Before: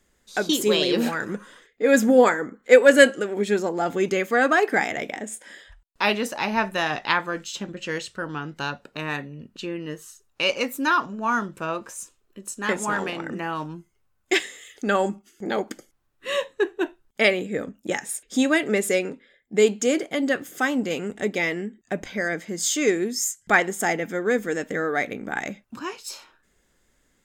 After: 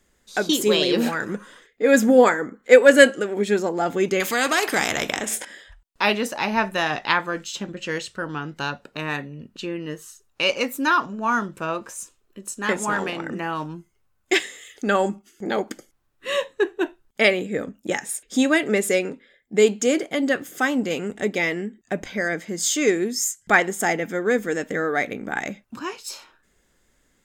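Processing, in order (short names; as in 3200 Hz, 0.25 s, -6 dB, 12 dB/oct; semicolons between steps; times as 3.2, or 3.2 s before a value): 4.2–5.45 spectral compressor 2:1; gain +1.5 dB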